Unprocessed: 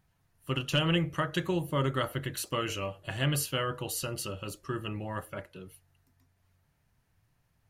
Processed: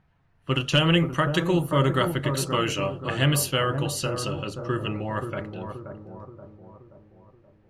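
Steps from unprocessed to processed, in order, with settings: notches 50/100 Hz; analogue delay 0.527 s, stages 4096, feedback 50%, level -7 dB; low-pass opened by the level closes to 2600 Hz, open at -26 dBFS; gain +7 dB

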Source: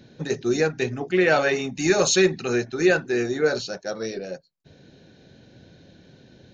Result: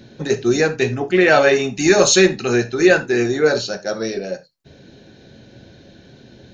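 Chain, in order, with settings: non-linear reverb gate 0.11 s falling, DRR 8.5 dB; gain +6 dB

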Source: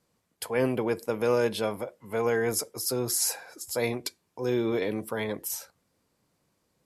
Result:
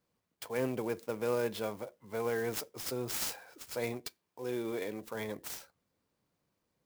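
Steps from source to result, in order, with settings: 3.99–5.15 low shelf 200 Hz -7.5 dB; clock jitter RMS 0.028 ms; gain -7.5 dB

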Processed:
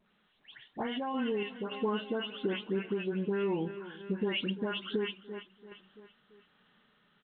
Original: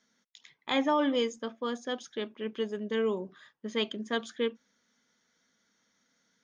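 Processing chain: spectral delay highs late, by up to 0.203 s; AGC gain up to 8.5 dB; varispeed -11%; feedback echo 0.338 s, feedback 53%, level -20 dB; limiter -16 dBFS, peak gain reduction 8 dB; compressor 6:1, threshold -28 dBFS, peak gain reduction 8.5 dB; random-step tremolo; A-law 64 kbps 8000 Hz

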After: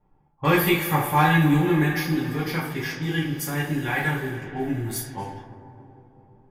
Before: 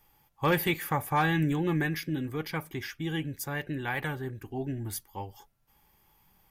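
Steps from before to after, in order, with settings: two-slope reverb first 0.4 s, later 4.2 s, from -18 dB, DRR -6.5 dB; low-pass opened by the level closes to 640 Hz, open at -25 dBFS

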